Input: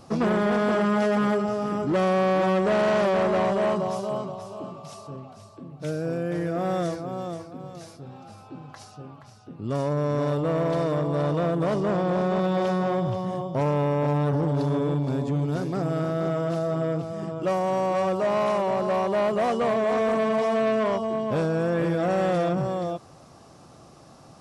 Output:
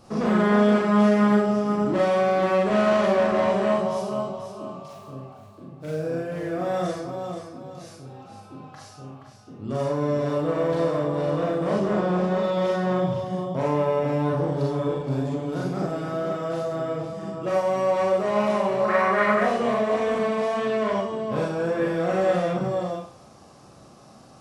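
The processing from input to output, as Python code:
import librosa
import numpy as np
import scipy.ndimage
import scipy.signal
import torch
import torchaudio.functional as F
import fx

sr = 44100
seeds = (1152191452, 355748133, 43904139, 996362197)

y = fx.median_filter(x, sr, points=9, at=(4.88, 6.64))
y = fx.band_shelf(y, sr, hz=1600.0, db=13.0, octaves=1.2, at=(18.84, 19.41))
y = fx.rev_schroeder(y, sr, rt60_s=0.45, comb_ms=30, drr_db=-3.0)
y = y * librosa.db_to_amplitude(-4.0)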